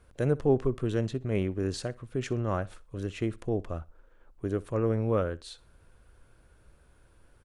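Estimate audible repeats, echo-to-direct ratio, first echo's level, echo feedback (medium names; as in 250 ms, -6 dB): 2, -21.5 dB, -22.0 dB, 27%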